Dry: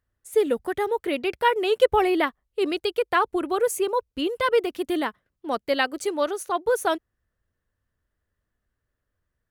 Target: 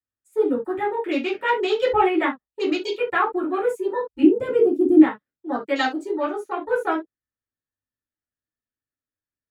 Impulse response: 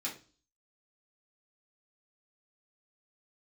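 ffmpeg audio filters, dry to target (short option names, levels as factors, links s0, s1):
-filter_complex "[0:a]afwtdn=0.0178,asettb=1/sr,asplit=3[s0][s1][s2];[s0]atrim=end=4.224[s3];[s1]atrim=start=4.22:end=5.01,asetpts=PTS-STARTPTS,afade=t=in:d=0.004:c=qsin,afade=t=out:st=0.786:d=0.004:c=qsin,equalizer=f=125:t=o:w=1:g=9,equalizer=f=250:t=o:w=1:g=11,equalizer=f=500:t=o:w=1:g=5,equalizer=f=1000:t=o:w=1:g=-9,equalizer=f=2000:t=o:w=1:g=-11,equalizer=f=4000:t=o:w=1:g=-8,equalizer=f=8000:t=o:w=1:g=4[s4];[s2]atrim=start=5.006[s5];[s3][s4]acrossfade=d=0.004:c1=hsin:c2=qsin[s6];[s6][s5]acrossfade=d=0.004:c1=qsin:c2=hsin[s7];[1:a]atrim=start_sample=2205,atrim=end_sample=3528[s8];[s7][s8]afir=irnorm=-1:irlink=0"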